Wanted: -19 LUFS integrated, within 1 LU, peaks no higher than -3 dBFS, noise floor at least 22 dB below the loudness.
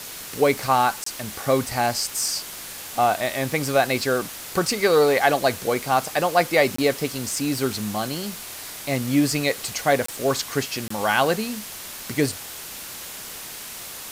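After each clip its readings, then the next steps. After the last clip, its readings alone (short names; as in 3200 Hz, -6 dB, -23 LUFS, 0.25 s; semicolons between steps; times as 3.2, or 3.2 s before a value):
dropouts 4; longest dropout 24 ms; noise floor -37 dBFS; noise floor target -45 dBFS; loudness -23.0 LUFS; peak -4.5 dBFS; loudness target -19.0 LUFS
-> interpolate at 1.04/6.76/10.06/10.88, 24 ms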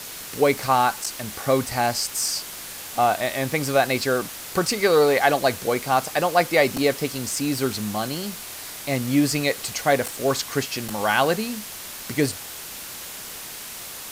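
dropouts 0; noise floor -37 dBFS; noise floor target -45 dBFS
-> denoiser 8 dB, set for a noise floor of -37 dBFS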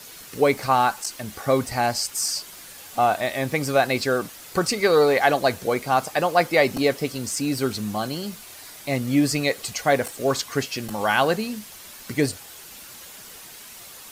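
noise floor -43 dBFS; noise floor target -45 dBFS
-> denoiser 6 dB, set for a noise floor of -43 dBFS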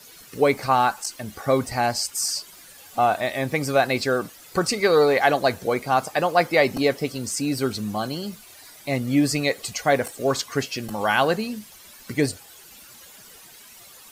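noise floor -47 dBFS; loudness -23.0 LUFS; peak -5.0 dBFS; loudness target -19.0 LUFS
-> gain +4 dB; limiter -3 dBFS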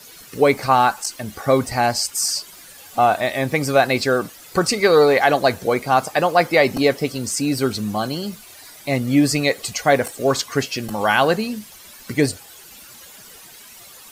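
loudness -19.0 LUFS; peak -3.0 dBFS; noise floor -43 dBFS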